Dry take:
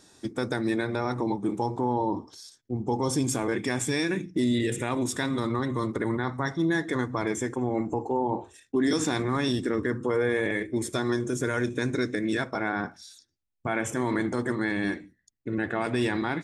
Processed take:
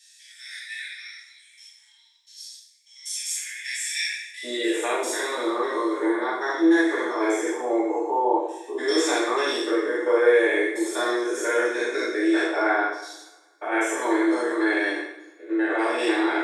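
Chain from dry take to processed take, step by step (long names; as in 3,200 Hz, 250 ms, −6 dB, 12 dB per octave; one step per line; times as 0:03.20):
spectrum averaged block by block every 100 ms
Chebyshev high-pass filter 1,800 Hz, order 6, from 0:04.43 320 Hz
coupled-rooms reverb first 0.66 s, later 1.7 s, DRR −8 dB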